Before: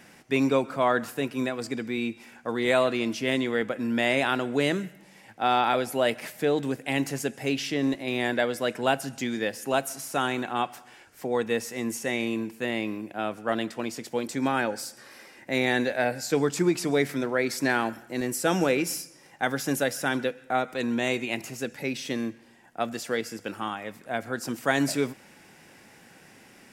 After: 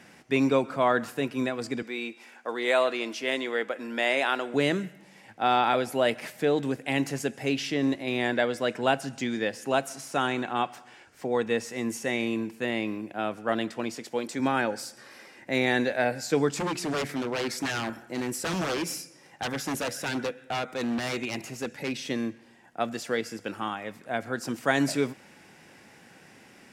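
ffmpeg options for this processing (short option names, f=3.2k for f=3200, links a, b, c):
-filter_complex "[0:a]asettb=1/sr,asplit=3[a][b][c];[a]atrim=end=1.824[d];[b]atrim=start=1.82:end=4.54,asetpts=PTS-STARTPTS,afade=t=in:d=0.004:c=qsin,afade=t=out:st=2.716:d=0.004:c=qsin,highpass=400[e];[c]atrim=start=4.536[f];[d][e]acrossfade=d=0.004:c1=hsin:c2=qsin[g];[g][f]acrossfade=d=0.004:c1=qsin:c2=hsin,asettb=1/sr,asplit=3[h][i][j];[h]atrim=end=8.194[k];[i]atrim=start=8.19:end=11.7,asetpts=PTS-STARTPTS,afade=t=in:d=0.004:c=qsin,afade=t=out:st=3.506:d=0.004:c=qsin,equalizer=f=12k:w=1.8:g=-6[l];[j]atrim=start=11.696[m];[k][l]acrossfade=d=0.004:c1=hsin:c2=qsin[n];[n][m]acrossfade=d=0.004:c1=qsin:c2=hsin,asettb=1/sr,asplit=3[o][p][q];[o]atrim=end=13.954[r];[p]atrim=start=13.95:end=14.4,asetpts=PTS-STARTPTS,afade=t=in:d=0.004:c=qsin,afade=t=out:st=0.446:d=0.004:c=qsin,highpass=f=220:p=1[s];[q]atrim=start=14.396[t];[r][s]acrossfade=d=0.004:c1=hsin:c2=qsin[u];[u][t]acrossfade=d=0.004:c1=qsin:c2=hsin,asettb=1/sr,asplit=3[v][w][x];[v]atrim=end=16.554[y];[w]atrim=start=16.55:end=21.99,asetpts=PTS-STARTPTS,afade=t=in:d=0.004:c=qsin,afade=t=out:st=5.436:d=0.004:c=qsin,aeval=exprs='0.0668*(abs(mod(val(0)/0.0668+3,4)-2)-1)':c=same[z];[x]atrim=start=21.986[aa];[y][z]acrossfade=d=0.004:c1=hsin:c2=qsin[ab];[ab][aa]acrossfade=d=0.004:c1=qsin:c2=hsin,highpass=48,highshelf=f=12k:g=-11"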